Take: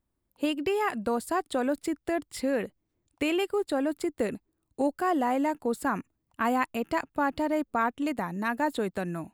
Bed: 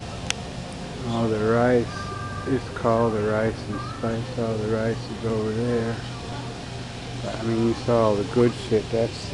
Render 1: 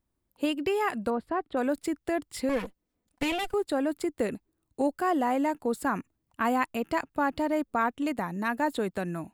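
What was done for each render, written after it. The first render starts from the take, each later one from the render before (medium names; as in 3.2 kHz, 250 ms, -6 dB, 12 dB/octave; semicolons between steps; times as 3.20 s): 1.10–1.57 s: distance through air 450 m; 2.49–3.54 s: comb filter that takes the minimum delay 4 ms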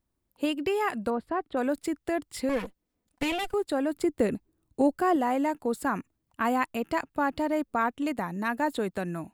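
3.94–5.16 s: bass shelf 490 Hz +6 dB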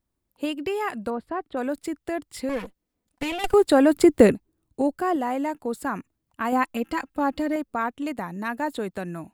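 3.44–4.32 s: gain +11 dB; 6.52–7.56 s: comb 3.8 ms, depth 80%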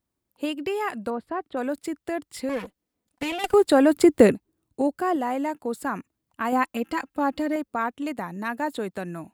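high-pass 98 Hz 6 dB/octave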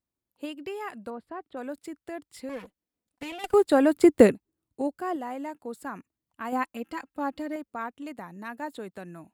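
upward expansion 1.5:1, over -27 dBFS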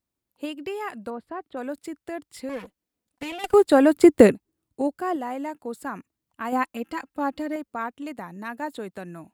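trim +4 dB; peak limiter -1 dBFS, peak gain reduction 2 dB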